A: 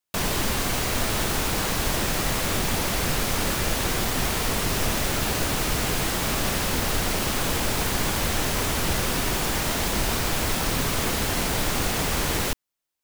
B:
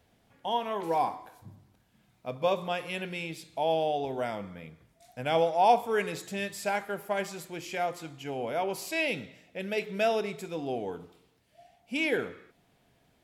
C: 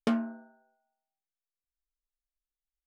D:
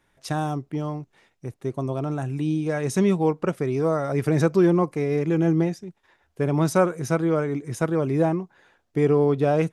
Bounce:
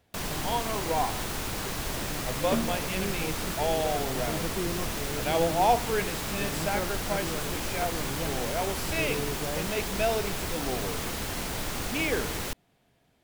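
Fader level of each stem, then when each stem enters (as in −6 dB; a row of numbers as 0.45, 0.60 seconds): −8.0, −1.0, −2.0, −15.5 decibels; 0.00, 0.00, 2.45, 0.00 seconds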